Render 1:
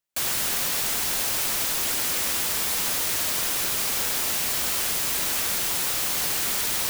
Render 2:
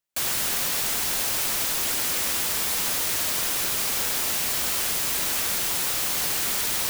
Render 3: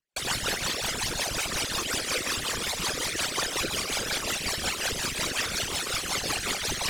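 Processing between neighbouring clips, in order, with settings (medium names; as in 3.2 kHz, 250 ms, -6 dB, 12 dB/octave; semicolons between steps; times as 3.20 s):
no audible change
resonances exaggerated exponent 3; rotary cabinet horn 5.5 Hz; distance through air 63 m; trim +4.5 dB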